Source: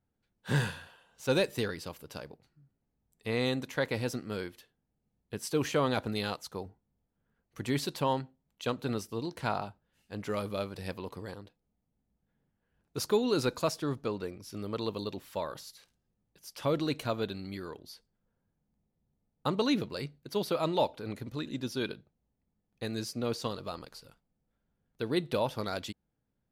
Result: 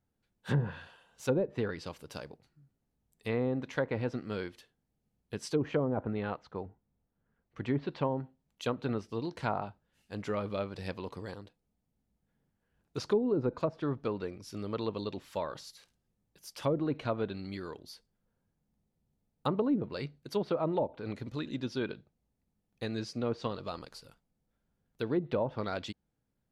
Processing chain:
0:05.84–0:08.02: low-pass filter 1,600 Hz → 3,300 Hz 12 dB per octave
treble cut that deepens with the level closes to 550 Hz, closed at −24 dBFS

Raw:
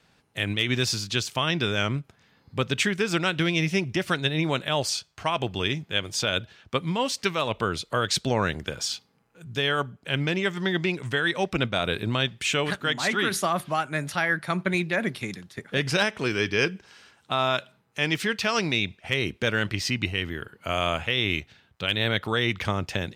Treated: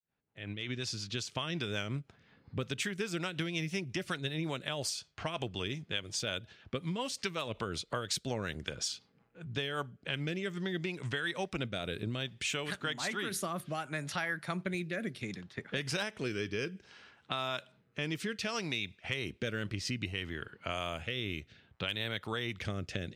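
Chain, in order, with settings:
fade in at the beginning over 1.68 s
high-shelf EQ 9,300 Hz +11 dB
low-pass that shuts in the quiet parts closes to 2,500 Hz, open at −20.5 dBFS
rotating-speaker cabinet horn 5.5 Hz, later 0.65 Hz, at 0:09.49
downward compressor 3 to 1, threshold −35 dBFS, peak gain reduction 12.5 dB

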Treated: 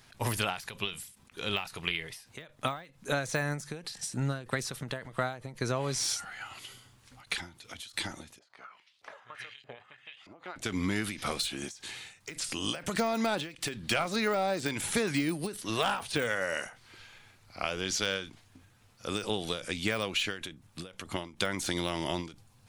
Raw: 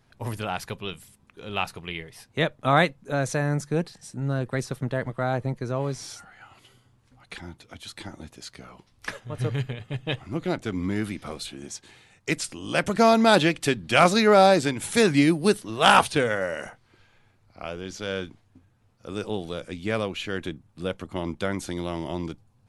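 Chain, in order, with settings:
de-essing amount 90%
tilt shelving filter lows −6.5 dB, about 1,300 Hz
downward compressor 16 to 1, threshold −32 dBFS, peak gain reduction 14.5 dB
0:08.39–0:10.56: auto-filter band-pass saw up 1.6 Hz 530–4,000 Hz
every ending faded ahead of time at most 130 dB per second
level +6.5 dB

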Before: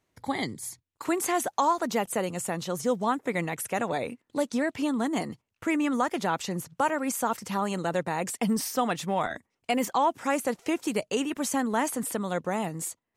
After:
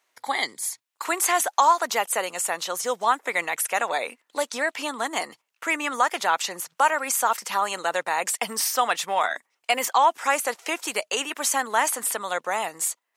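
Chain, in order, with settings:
high-pass filter 820 Hz 12 dB per octave
level +8.5 dB

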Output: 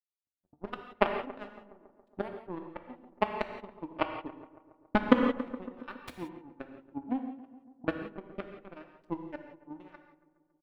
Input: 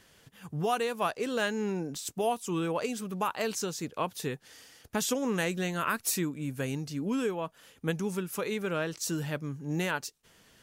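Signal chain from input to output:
adaptive Wiener filter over 41 samples
low-shelf EQ 360 Hz +6 dB
comb filter 3.4 ms, depth 90%
transient designer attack +9 dB, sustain −5 dB
power curve on the samples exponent 3
high-frequency loss of the air 450 metres
feedback echo with a low-pass in the loop 139 ms, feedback 70%, low-pass 1,900 Hz, level −16 dB
reverb whose tail is shaped and stops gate 200 ms flat, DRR 5.5 dB
boost into a limiter +12.5 dB
level −3 dB

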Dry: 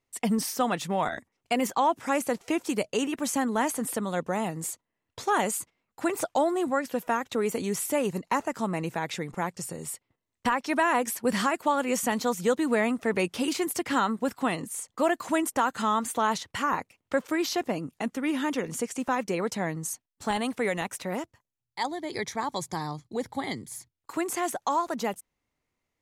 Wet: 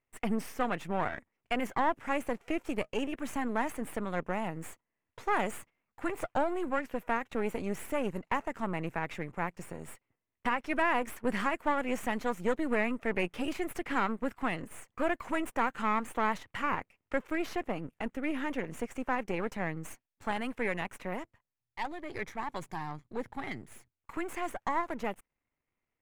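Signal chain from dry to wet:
gain on one half-wave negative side −12 dB
high shelf with overshoot 3,200 Hz −9 dB, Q 1.5
level −2.5 dB

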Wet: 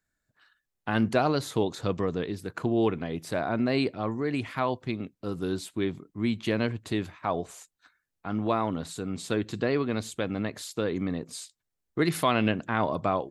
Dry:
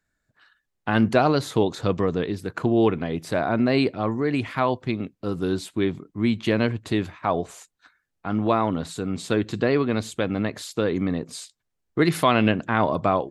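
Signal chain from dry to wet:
high-shelf EQ 6,200 Hz +5.5 dB
level −5.5 dB

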